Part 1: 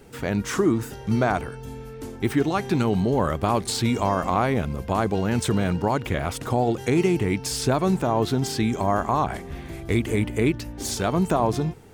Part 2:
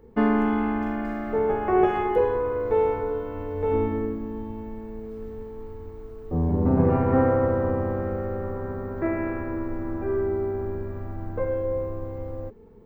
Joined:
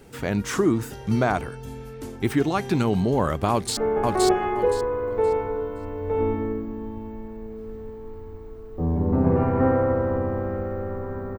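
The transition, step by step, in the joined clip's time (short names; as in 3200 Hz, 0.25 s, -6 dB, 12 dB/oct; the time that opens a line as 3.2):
part 1
3.51–3.77 echo throw 0.52 s, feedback 25%, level -1.5 dB
3.77 switch to part 2 from 1.3 s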